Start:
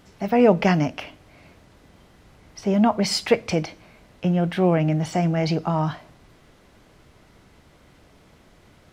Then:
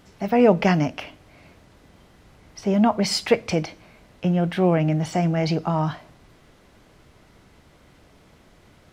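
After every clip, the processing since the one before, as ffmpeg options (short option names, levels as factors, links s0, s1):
-af anull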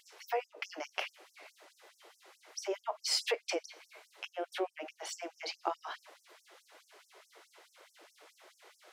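-af "bandreject=f=50:t=h:w=6,bandreject=f=100:t=h:w=6,bandreject=f=150:t=h:w=6,bandreject=f=200:t=h:w=6,acompressor=threshold=0.0501:ratio=16,afftfilt=real='re*gte(b*sr/1024,300*pow(5400/300,0.5+0.5*sin(2*PI*4.7*pts/sr)))':imag='im*gte(b*sr/1024,300*pow(5400/300,0.5+0.5*sin(2*PI*4.7*pts/sr)))':win_size=1024:overlap=0.75"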